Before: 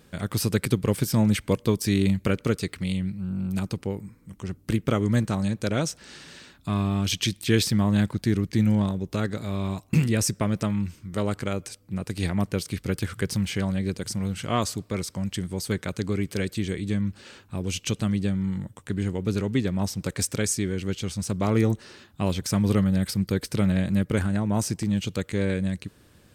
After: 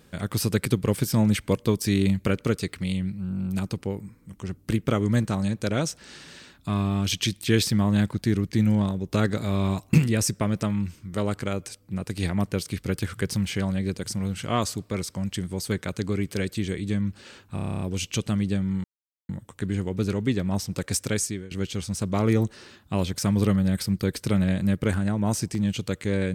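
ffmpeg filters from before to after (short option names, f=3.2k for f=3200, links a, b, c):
-filter_complex "[0:a]asplit=14[a][b][c][d][e][f][g][h][i][j][k][l][m][n];[a]atrim=end=9.132[o];[b]atrim=start=9.128:end=9.982,asetpts=PTS-STARTPTS,volume=4dB[p];[c]atrim=start=9.978:end=17.572[q];[d]atrim=start=17.538:end=17.572[r];[e]atrim=start=17.538:end=17.572[s];[f]atrim=start=17.538:end=17.572[t];[g]atrim=start=17.538:end=17.572[u];[h]atrim=start=17.538:end=17.572[v];[i]atrim=start=17.538:end=17.572[w];[j]atrim=start=17.538:end=17.572[x];[k]atrim=start=17.538:end=17.572[y];[l]atrim=start=17.538:end=18.57,asetpts=PTS-STARTPTS,afade=t=out:st=1.028:d=0.004:c=hsin,apad=pad_dur=0.45[z];[m]atrim=start=18.57:end=20.79,asetpts=PTS-STARTPTS,afade=t=in:d=0.004:c=hsin,afade=t=out:st=1.89:d=0.33:silence=0.112202[aa];[n]atrim=start=20.79,asetpts=PTS-STARTPTS,afade=t=in:d=0.004:c=hsin:silence=0.112202[ab];[o][p]acrossfade=d=0.004:c1=hsin:c2=hsin[ac];[ac][q]acrossfade=d=0.004:c1=hsin:c2=hsin[ad];[ad][r]acrossfade=d=0.004:c1=hsin:c2=hsin[ae];[ae][s]acrossfade=d=0.004:c1=hsin:c2=hsin[af];[af][t]acrossfade=d=0.004:c1=hsin:c2=hsin[ag];[ag][u]acrossfade=d=0.004:c1=hsin:c2=hsin[ah];[ah][v]acrossfade=d=0.004:c1=hsin:c2=hsin[ai];[ai][w]acrossfade=d=0.004:c1=hsin:c2=hsin[aj];[aj][x]acrossfade=d=0.004:c1=hsin:c2=hsin[ak];[ak][y]acrossfade=d=0.004:c1=hsin:c2=hsin[al];[z][aa][ab]concat=n=3:v=0:a=1[am];[al][am]acrossfade=d=0.004:c1=hsin:c2=hsin"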